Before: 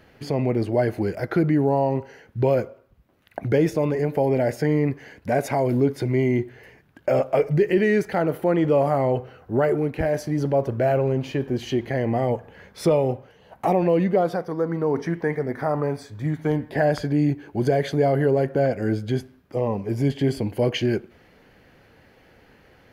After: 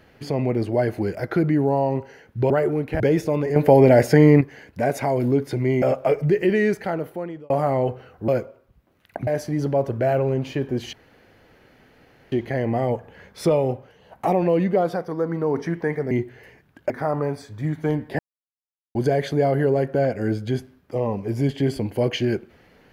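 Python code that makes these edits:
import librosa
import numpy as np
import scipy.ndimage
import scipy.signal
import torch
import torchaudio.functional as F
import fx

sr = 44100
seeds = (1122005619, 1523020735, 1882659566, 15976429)

y = fx.edit(x, sr, fx.swap(start_s=2.5, length_s=0.99, other_s=9.56, other_length_s=0.5),
    fx.clip_gain(start_s=4.05, length_s=0.85, db=8.0),
    fx.move(start_s=6.31, length_s=0.79, to_s=15.51),
    fx.fade_out_span(start_s=7.93, length_s=0.85),
    fx.insert_room_tone(at_s=11.72, length_s=1.39),
    fx.silence(start_s=16.8, length_s=0.76), tone=tone)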